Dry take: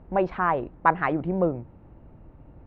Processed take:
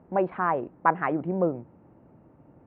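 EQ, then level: band-pass 160–3600 Hz; distance through air 380 m; 0.0 dB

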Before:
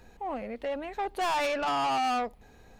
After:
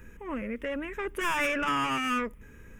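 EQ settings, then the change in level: static phaser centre 1.8 kHz, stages 4; +6.5 dB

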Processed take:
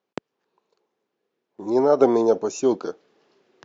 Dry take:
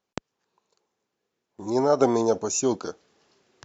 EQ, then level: band-pass 150–4200 Hz; peaking EQ 400 Hz +5 dB 1.2 oct; 0.0 dB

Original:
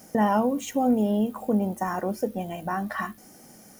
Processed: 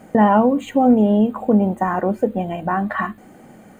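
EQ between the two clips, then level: boxcar filter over 8 samples; +8.5 dB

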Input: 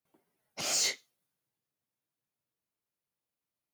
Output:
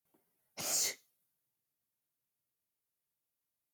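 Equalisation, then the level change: bass shelf 120 Hz +4 dB; dynamic bell 3.4 kHz, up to -7 dB, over -45 dBFS, Q 1.1; peaking EQ 14 kHz +11 dB 1.1 oct; -5.0 dB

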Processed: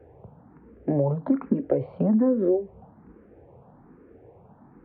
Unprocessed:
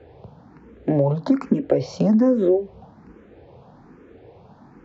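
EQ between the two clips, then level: Gaussian low-pass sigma 4.3 samples; -4.0 dB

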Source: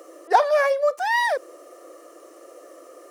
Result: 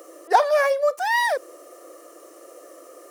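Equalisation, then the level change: treble shelf 8.1 kHz +8 dB; 0.0 dB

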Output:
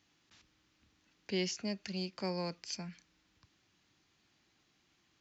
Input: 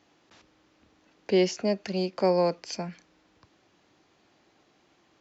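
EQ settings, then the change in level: peaking EQ 560 Hz -14.5 dB 2.3 oct; -3.0 dB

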